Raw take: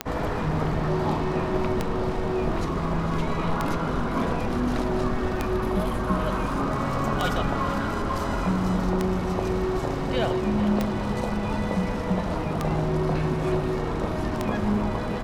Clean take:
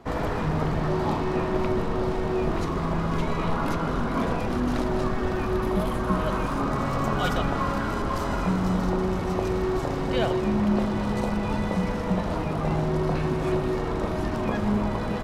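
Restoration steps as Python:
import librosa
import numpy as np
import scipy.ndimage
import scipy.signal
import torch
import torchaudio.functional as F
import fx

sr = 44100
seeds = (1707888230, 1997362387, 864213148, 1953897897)

y = fx.fix_declick_ar(x, sr, threshold=10.0)
y = fx.fix_echo_inverse(y, sr, delay_ms=450, level_db=-13.5)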